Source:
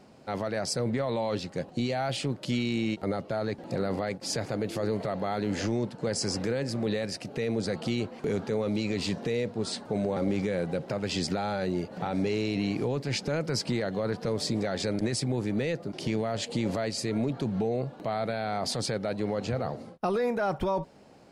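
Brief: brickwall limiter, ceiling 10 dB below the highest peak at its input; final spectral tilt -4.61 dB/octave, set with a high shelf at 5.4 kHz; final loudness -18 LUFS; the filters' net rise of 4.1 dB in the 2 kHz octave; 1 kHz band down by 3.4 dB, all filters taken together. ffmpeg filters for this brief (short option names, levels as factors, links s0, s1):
-af "equalizer=f=1000:t=o:g=-7,equalizer=f=2000:t=o:g=6,highshelf=f=5400:g=7.5,volume=6.68,alimiter=limit=0.376:level=0:latency=1"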